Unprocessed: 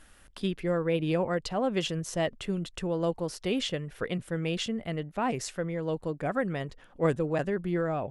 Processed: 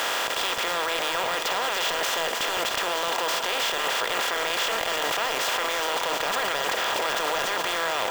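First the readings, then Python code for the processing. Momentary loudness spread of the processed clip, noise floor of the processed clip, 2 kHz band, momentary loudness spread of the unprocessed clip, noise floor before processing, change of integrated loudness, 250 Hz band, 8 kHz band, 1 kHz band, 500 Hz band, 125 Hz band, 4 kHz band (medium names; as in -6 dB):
1 LU, -28 dBFS, +13.5 dB, 6 LU, -56 dBFS, +6.0 dB, -10.5 dB, +13.0 dB, +11.0 dB, +0.5 dB, -17.5 dB, +13.5 dB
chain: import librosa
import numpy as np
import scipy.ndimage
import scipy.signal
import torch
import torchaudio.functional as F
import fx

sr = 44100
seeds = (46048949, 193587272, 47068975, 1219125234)

p1 = fx.bin_compress(x, sr, power=0.2)
p2 = scipy.signal.sosfilt(scipy.signal.butter(2, 980.0, 'highpass', fs=sr, output='sos'), p1)
p3 = fx.over_compress(p2, sr, threshold_db=-34.0, ratio=-0.5)
p4 = p2 + (p3 * 10.0 ** (0.0 / 20.0))
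p5 = np.clip(p4, -10.0 ** (-20.0 / 20.0), 10.0 ** (-20.0 / 20.0))
p6 = p5 + 10.0 ** (-7.5 / 20.0) * np.pad(p5, (int(304 * sr / 1000.0), 0))[:len(p5)]
y = np.repeat(scipy.signal.resample_poly(p6, 1, 2), 2)[:len(p6)]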